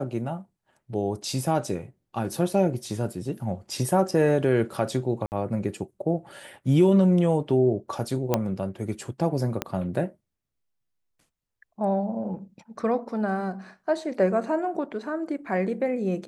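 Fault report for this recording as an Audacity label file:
5.260000	5.320000	dropout 59 ms
8.340000	8.340000	pop -8 dBFS
9.620000	9.620000	pop -11 dBFS

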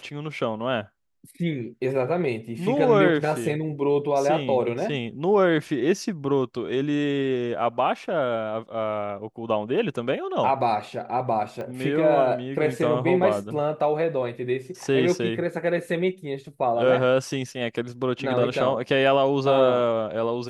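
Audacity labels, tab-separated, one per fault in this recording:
11.610000	11.610000	pop -23 dBFS

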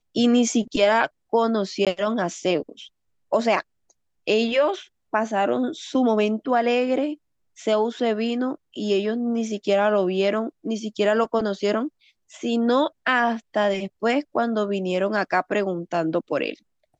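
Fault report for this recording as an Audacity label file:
1.850000	1.870000	dropout 17 ms

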